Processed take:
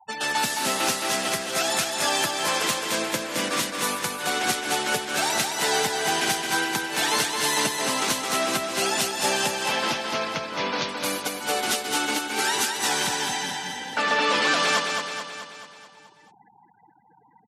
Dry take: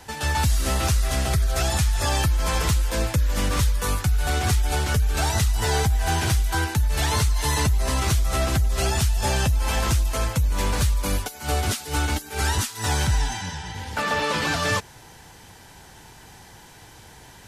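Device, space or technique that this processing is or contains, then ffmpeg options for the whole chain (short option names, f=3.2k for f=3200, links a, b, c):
presence and air boost: -filter_complex "[0:a]asettb=1/sr,asplit=3[a][b][c];[a]atrim=end=9.534[d];[b]atrim=start=9.53:end=10.89,asetpts=PTS-STARTPTS,afade=t=in:d=0.004:c=qsin,afade=t=out:st=1.356:d=0.004:c=qsin,lowpass=f=5.5k:w=0.5412,lowpass=f=5.5k:w=1.3066[e];[c]atrim=start=10.886[f];[d][e]acrossfade=d=0.004:c1=hsin:c2=qsin[g];[g][f]acrossfade=d=0.004:c1=qsin:c2=hsin,afftfilt=real='re*gte(hypot(re,im),0.0158)':imag='im*gte(hypot(re,im),0.0158)':win_size=1024:overlap=0.75,highpass=f=220:w=0.5412,highpass=f=220:w=1.3066,equalizer=f=2.9k:t=o:w=1.8:g=3.5,highshelf=f=11k:g=3,aecho=1:1:216|432|648|864|1080|1296|1512:0.562|0.315|0.176|0.0988|0.0553|0.031|0.0173"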